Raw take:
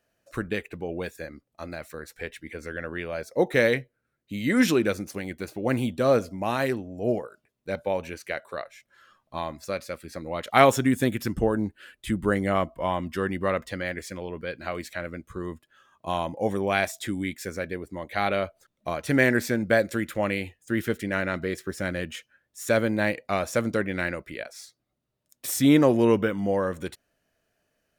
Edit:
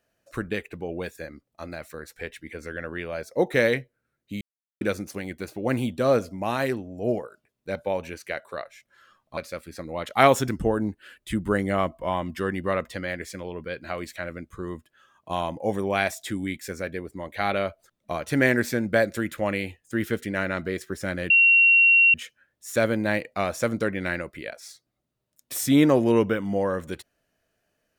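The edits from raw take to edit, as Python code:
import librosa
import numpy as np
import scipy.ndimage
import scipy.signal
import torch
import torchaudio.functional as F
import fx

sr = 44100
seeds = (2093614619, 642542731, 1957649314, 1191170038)

y = fx.edit(x, sr, fx.silence(start_s=4.41, length_s=0.4),
    fx.cut(start_s=9.37, length_s=0.37),
    fx.cut(start_s=10.85, length_s=0.4),
    fx.insert_tone(at_s=22.07, length_s=0.84, hz=2740.0, db=-13.0), tone=tone)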